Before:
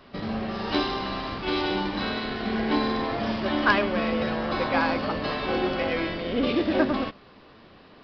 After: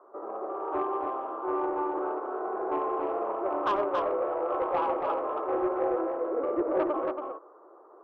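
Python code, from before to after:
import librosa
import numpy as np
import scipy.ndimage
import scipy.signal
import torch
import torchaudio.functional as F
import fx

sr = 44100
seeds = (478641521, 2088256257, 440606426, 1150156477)

y = scipy.signal.sosfilt(scipy.signal.cheby1(4, 1.0, [340.0, 1300.0], 'bandpass', fs=sr, output='sos'), x)
y = 10.0 ** (-20.0 / 20.0) * np.tanh(y / 10.0 ** (-20.0 / 20.0))
y = fx.echo_multitap(y, sr, ms=(92, 278), db=(-17.0, -4.5))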